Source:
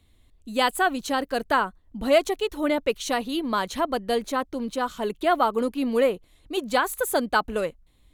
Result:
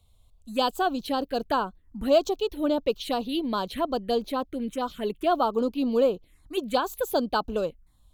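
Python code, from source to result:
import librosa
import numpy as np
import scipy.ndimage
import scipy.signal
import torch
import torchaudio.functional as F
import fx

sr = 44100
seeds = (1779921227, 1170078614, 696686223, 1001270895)

y = fx.env_phaser(x, sr, low_hz=300.0, high_hz=2000.0, full_db=-22.0)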